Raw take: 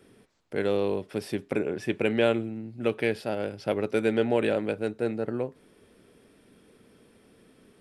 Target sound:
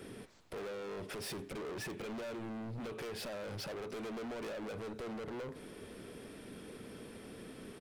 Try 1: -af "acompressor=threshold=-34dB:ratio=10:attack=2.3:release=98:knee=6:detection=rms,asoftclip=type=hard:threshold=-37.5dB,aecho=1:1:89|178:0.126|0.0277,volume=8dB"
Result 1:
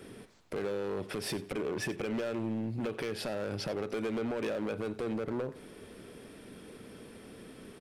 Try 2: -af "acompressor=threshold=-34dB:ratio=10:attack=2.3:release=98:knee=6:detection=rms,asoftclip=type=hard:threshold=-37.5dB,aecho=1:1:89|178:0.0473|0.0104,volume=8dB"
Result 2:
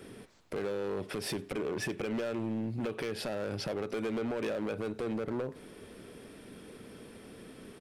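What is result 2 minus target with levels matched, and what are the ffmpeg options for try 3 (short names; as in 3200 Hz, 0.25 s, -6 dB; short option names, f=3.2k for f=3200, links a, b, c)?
hard clip: distortion -8 dB
-af "acompressor=threshold=-34dB:ratio=10:attack=2.3:release=98:knee=6:detection=rms,asoftclip=type=hard:threshold=-48.5dB,aecho=1:1:89|178:0.0473|0.0104,volume=8dB"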